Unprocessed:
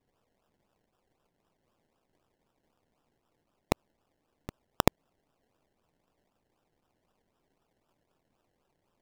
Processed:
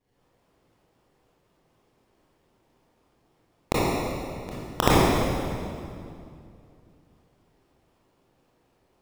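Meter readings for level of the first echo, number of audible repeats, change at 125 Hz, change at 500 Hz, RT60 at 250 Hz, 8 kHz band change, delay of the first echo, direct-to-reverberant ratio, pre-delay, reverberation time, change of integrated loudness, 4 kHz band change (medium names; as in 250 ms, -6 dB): no echo, no echo, +11.0 dB, +10.0 dB, 3.0 s, +8.5 dB, no echo, -9.0 dB, 23 ms, 2.4 s, +5.0 dB, +9.5 dB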